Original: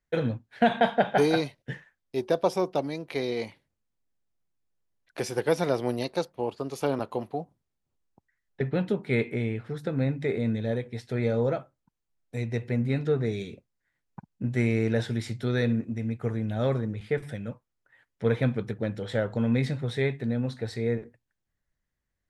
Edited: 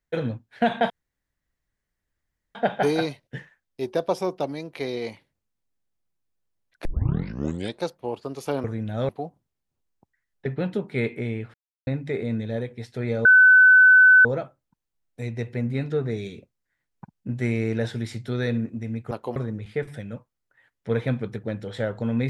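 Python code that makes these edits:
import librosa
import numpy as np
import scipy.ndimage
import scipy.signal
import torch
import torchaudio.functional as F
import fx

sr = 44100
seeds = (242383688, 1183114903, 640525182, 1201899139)

y = fx.edit(x, sr, fx.insert_room_tone(at_s=0.9, length_s=1.65),
    fx.tape_start(start_s=5.2, length_s=0.98),
    fx.swap(start_s=6.99, length_s=0.25, other_s=16.26, other_length_s=0.45),
    fx.silence(start_s=9.69, length_s=0.33),
    fx.insert_tone(at_s=11.4, length_s=1.0, hz=1510.0, db=-9.5), tone=tone)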